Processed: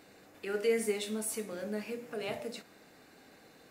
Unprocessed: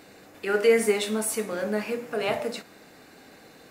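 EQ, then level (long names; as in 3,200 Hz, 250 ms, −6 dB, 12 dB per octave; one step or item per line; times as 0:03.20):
dynamic equaliser 1,100 Hz, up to −7 dB, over −39 dBFS, Q 0.72
−7.5 dB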